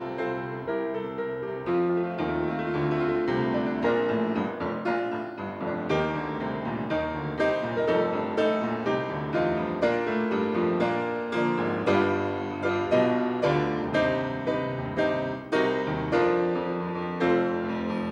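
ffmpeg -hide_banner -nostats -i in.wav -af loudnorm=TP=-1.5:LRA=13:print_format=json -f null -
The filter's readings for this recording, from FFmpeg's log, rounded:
"input_i" : "-27.0",
"input_tp" : "-9.7",
"input_lra" : "2.2",
"input_thresh" : "-37.0",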